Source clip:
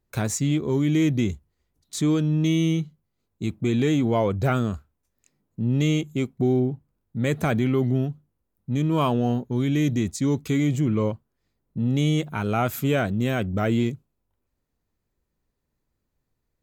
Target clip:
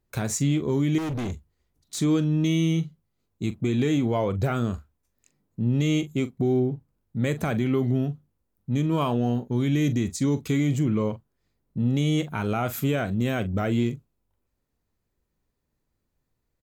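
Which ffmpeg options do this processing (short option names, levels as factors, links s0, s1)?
-filter_complex "[0:a]asplit=2[s0][s1];[s1]adelay=42,volume=0.2[s2];[s0][s2]amix=inputs=2:normalize=0,asettb=1/sr,asplit=3[s3][s4][s5];[s3]atrim=end=0.984[s6];[s4]atrim=start=0.98:end=2.01,asetpts=PTS-STARTPTS,afade=t=in:d=0.004:c=qsin,afade=t=out:st=1.026:d=0.004:c=qsin,volume=22.4,asoftclip=hard,volume=0.0447[s7];[s5]atrim=start=2.006[s8];[s6][s7]acrossfade=d=0.004:c1=hsin:c2=qsin[s9];[s9][s8]acrossfade=d=0.004:c1=qsin:c2=hsin,alimiter=limit=0.188:level=0:latency=1:release=154"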